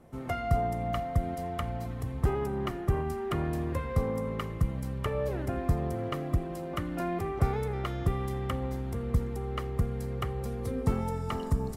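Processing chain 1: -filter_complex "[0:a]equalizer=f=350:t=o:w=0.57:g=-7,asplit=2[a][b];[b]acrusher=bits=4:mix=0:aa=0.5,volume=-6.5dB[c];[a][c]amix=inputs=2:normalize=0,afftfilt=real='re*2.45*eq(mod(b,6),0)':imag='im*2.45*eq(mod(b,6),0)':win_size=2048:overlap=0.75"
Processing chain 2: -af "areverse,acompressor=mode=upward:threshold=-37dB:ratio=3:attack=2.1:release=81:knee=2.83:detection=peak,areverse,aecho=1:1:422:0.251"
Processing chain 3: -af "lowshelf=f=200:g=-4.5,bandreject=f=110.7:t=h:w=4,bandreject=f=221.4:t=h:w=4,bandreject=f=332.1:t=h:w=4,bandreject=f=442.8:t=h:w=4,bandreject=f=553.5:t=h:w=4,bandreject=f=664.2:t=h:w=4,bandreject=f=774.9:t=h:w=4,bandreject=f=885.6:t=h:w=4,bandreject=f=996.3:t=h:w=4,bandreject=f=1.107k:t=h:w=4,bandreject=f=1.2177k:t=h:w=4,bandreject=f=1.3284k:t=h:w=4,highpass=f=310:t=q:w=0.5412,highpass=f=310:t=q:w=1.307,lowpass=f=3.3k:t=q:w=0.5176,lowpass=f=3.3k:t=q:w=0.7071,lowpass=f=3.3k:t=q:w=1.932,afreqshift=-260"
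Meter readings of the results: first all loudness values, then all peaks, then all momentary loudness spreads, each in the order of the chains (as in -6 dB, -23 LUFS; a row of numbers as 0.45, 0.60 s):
-31.0, -32.0, -38.0 LUFS; -13.5, -13.5, -18.5 dBFS; 8, 5, 7 LU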